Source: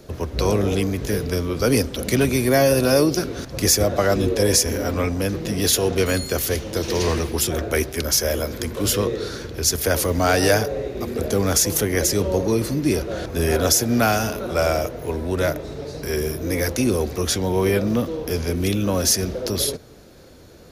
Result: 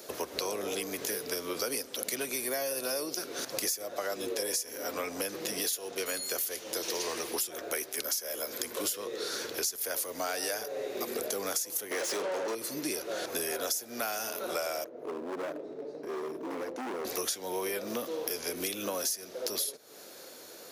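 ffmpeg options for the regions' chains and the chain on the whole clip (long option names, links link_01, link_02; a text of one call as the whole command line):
ffmpeg -i in.wav -filter_complex "[0:a]asettb=1/sr,asplit=3[link_01][link_02][link_03];[link_01]atrim=end=11.914[link_04];[link_02]atrim=start=11.91:end=12.55,asetpts=PTS-STARTPTS,afade=type=in:duration=0.004:curve=qsin,afade=type=out:start_time=0.636:duration=0.004:curve=qsin,lowpass=frequency=11000:width=0.5412,lowpass=frequency=11000:width=1.3066,asplit=2[link_05][link_06];[link_06]highpass=frequency=720:poles=1,volume=29dB,asoftclip=type=tanh:threshold=-7.5dB[link_07];[link_05][link_07]amix=inputs=2:normalize=0,lowpass=frequency=1500:poles=1,volume=-6dB[link_08];[link_03]atrim=start=12.546[link_09];[link_04][link_08]acrossfade=duration=0.004:curve1=hsin:curve2=qsin[link_10];[link_10][link_09]acrossfade=duration=0.004:curve1=qsin:curve2=hsin,asettb=1/sr,asplit=3[link_11][link_12][link_13];[link_11]atrim=end=14.844[link_14];[link_12]atrim=start=14.84:end=17.05,asetpts=PTS-STARTPTS,afade=type=in:duration=0.004:curve=qsin,afade=type=out:start_time=2.206:duration=0.004:curve=qsin,bandpass=frequency=280:width_type=q:width=1.3,asoftclip=type=hard:threshold=-28dB[link_15];[link_13]atrim=start=17.046[link_16];[link_14][link_15]acrossfade=duration=0.004:curve1=hsin:curve2=qsin[link_17];[link_17][link_16]acrossfade=duration=0.004:curve1=qsin:curve2=hsin,highpass=450,highshelf=frequency=6100:gain=11,acompressor=threshold=-31dB:ratio=8" out.wav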